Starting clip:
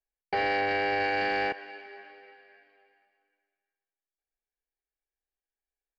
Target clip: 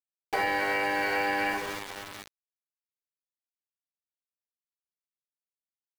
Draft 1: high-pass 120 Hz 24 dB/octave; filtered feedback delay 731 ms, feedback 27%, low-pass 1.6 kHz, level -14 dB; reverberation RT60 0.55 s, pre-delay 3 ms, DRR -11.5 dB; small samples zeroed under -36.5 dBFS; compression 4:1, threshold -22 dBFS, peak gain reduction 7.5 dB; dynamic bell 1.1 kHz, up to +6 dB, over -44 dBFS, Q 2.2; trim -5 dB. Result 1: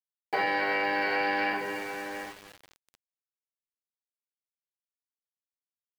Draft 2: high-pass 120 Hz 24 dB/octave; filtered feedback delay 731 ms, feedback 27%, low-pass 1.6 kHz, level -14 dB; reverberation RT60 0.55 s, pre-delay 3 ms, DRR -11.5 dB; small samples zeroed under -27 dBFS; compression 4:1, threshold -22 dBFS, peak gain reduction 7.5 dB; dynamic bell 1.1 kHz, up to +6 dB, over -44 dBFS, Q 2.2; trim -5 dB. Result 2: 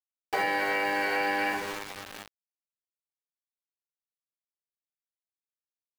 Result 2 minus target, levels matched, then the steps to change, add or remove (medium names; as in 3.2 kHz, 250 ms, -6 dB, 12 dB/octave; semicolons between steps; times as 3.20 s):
125 Hz band -2.5 dB
remove: high-pass 120 Hz 24 dB/octave